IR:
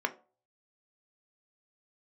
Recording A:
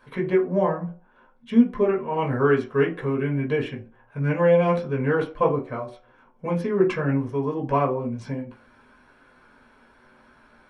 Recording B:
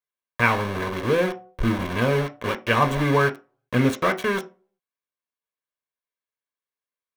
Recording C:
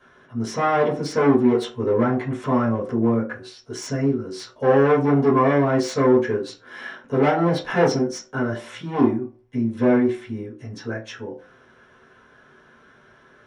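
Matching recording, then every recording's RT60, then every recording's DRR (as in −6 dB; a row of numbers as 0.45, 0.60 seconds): B; 0.40, 0.40, 0.40 seconds; −2.5, 7.0, −11.0 decibels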